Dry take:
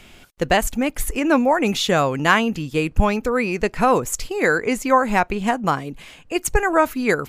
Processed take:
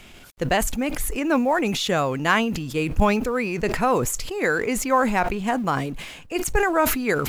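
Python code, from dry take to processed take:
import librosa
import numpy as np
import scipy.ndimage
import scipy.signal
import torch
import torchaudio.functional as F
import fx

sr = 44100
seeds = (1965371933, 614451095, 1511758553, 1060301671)

y = fx.law_mismatch(x, sr, coded='mu')
y = fx.sustainer(y, sr, db_per_s=45.0)
y = y * 10.0 ** (-4.5 / 20.0)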